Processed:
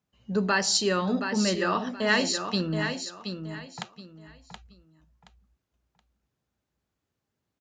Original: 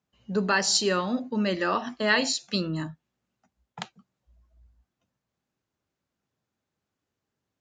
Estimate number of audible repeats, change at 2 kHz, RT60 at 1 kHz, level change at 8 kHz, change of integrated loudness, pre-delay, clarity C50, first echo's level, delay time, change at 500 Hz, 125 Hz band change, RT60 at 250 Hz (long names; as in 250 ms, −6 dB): 3, 0.0 dB, no reverb audible, 0.0 dB, −0.5 dB, no reverb audible, no reverb audible, −7.5 dB, 724 ms, 0.0 dB, +2.0 dB, no reverb audible